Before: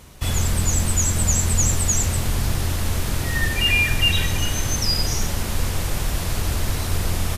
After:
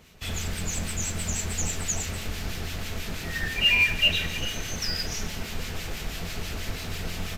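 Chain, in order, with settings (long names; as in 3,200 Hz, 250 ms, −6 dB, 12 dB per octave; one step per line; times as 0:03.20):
convolution reverb RT60 1.3 s, pre-delay 5 ms, DRR 10 dB
in parallel at −11.5 dB: sample-rate reduction 3,400 Hz, jitter 0%
on the sum: low-shelf EQ 370 Hz −9.5 dB
notch filter 580 Hz, Q 18
two-band tremolo in antiphase 6.1 Hz, depth 50%, crossover 1,500 Hz
graphic EQ with 15 bands 160 Hz +4 dB, 1,000 Hz −7 dB, 2,500 Hz +4 dB, 10,000 Hz −10 dB
highs frequency-modulated by the lows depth 0.19 ms
level −3 dB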